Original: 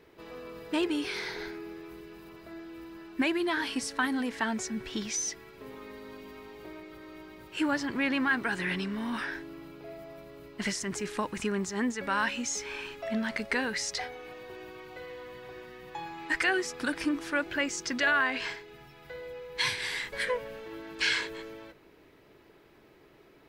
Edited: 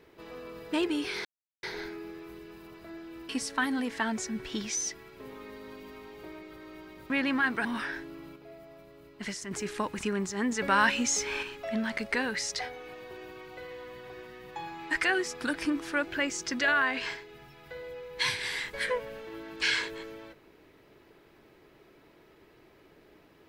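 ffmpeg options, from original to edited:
-filter_complex "[0:a]asplit=9[s0][s1][s2][s3][s4][s5][s6][s7][s8];[s0]atrim=end=1.25,asetpts=PTS-STARTPTS,afade=t=out:st=1.246:d=0.004:c=hsin,apad=pad_dur=0.38[s9];[s1]atrim=start=1.25:end=2.912,asetpts=PTS-STARTPTS,afade=t=in:d=0.004:c=hsin[s10];[s2]atrim=start=3.698:end=7.512[s11];[s3]atrim=start=7.968:end=8.522[s12];[s4]atrim=start=9.038:end=9.752[s13];[s5]atrim=start=9.748:end=10.902,asetpts=PTS-STARTPTS,volume=0.562[s14];[s6]atrim=start=10.898:end=11.912[s15];[s7]atrim=start=11.908:end=12.822,asetpts=PTS-STARTPTS,volume=1.78[s16];[s8]atrim=start=12.818[s17];[s9][s10]concat=n=2:v=0:a=1[s18];[s18][s11]acrossfade=d=0.004:c1=hsin:c2=hsin[s19];[s19][s12]acrossfade=d=0.004:c1=hsin:c2=hsin[s20];[s20][s13]acrossfade=d=0.004:c1=hsin:c2=hsin[s21];[s21][s14]acrossfade=d=0.004:c1=hsin:c2=hsin[s22];[s22][s15]acrossfade=d=0.004:c1=hsin:c2=hsin[s23];[s23][s16]acrossfade=d=0.004:c1=hsin:c2=hsin[s24];[s24][s17]acrossfade=d=0.004:c1=hsin:c2=hsin"

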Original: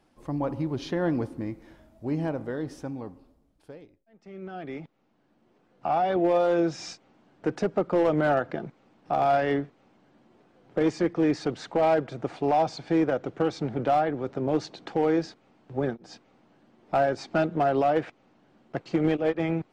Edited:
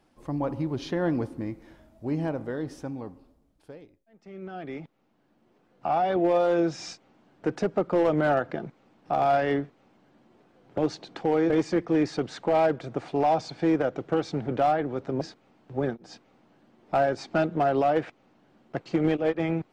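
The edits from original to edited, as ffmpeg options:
-filter_complex "[0:a]asplit=4[s0][s1][s2][s3];[s0]atrim=end=10.782[s4];[s1]atrim=start=14.488:end=15.212[s5];[s2]atrim=start=10.778:end=14.492[s6];[s3]atrim=start=15.208[s7];[s4][s5]acrossfade=d=0.004:c1=hsin:c2=hsin[s8];[s8][s6]acrossfade=d=0.004:c1=hsin:c2=hsin[s9];[s9][s7]acrossfade=d=0.004:c1=hsin:c2=hsin"

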